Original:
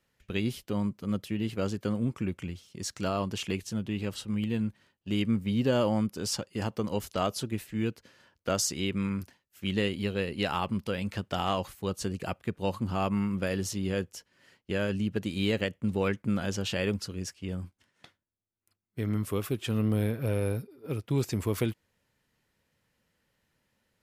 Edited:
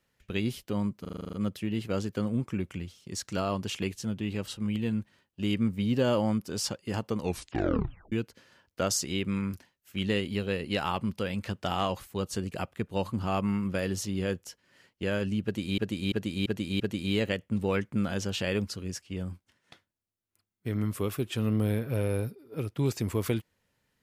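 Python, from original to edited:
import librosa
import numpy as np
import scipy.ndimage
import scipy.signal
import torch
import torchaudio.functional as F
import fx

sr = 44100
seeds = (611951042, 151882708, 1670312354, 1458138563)

y = fx.edit(x, sr, fx.stutter(start_s=1.01, slice_s=0.04, count=9),
    fx.tape_stop(start_s=6.86, length_s=0.94),
    fx.repeat(start_s=15.12, length_s=0.34, count=5), tone=tone)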